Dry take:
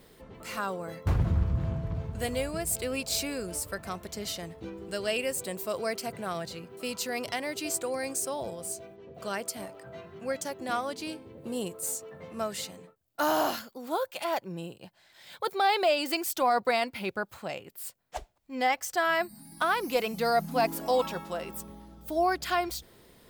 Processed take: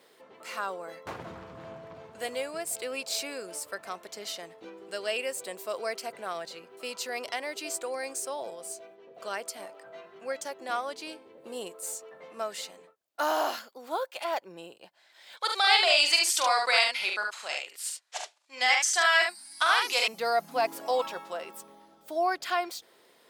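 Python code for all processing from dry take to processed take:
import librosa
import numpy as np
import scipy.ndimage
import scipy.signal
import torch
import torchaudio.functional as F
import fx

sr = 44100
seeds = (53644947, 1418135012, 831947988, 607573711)

y = fx.chain(x, sr, fx.weighting(curve='ITU-R 468'),
    fx.echo_multitap(ms=(44, 72), db=(-5.5, -4.5)), at=(15.37, 20.08))
y = scipy.signal.sosfilt(scipy.signal.butter(2, 450.0, 'highpass', fs=sr, output='sos'), y)
y = fx.high_shelf(y, sr, hz=11000.0, db=-10.0)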